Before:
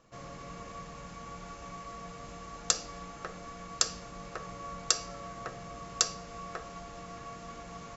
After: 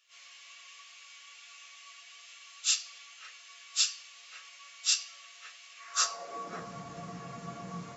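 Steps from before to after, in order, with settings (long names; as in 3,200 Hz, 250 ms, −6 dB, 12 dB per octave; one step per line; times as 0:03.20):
random phases in long frames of 100 ms
high-pass filter sweep 2,800 Hz → 140 Hz, 0:05.73–0:06.68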